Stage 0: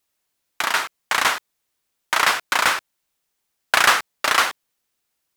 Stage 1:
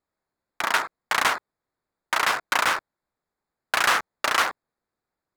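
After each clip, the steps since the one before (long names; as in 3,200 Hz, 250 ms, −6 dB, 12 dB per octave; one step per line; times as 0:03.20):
adaptive Wiener filter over 15 samples
brickwall limiter −10 dBFS, peak gain reduction 7.5 dB
level +1 dB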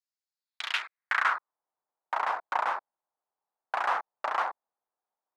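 band-pass filter sweep 5,600 Hz → 830 Hz, 0:00.30–0:01.61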